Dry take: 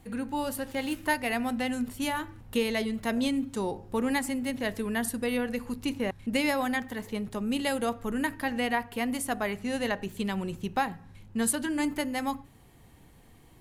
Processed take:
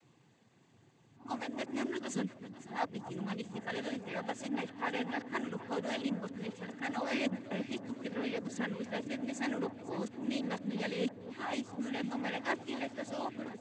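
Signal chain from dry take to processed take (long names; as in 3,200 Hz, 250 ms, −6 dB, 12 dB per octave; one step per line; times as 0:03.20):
played backwards from end to start
cochlear-implant simulation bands 16
delay that swaps between a low-pass and a high-pass 252 ms, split 1,300 Hz, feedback 73%, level −13 dB
level −7.5 dB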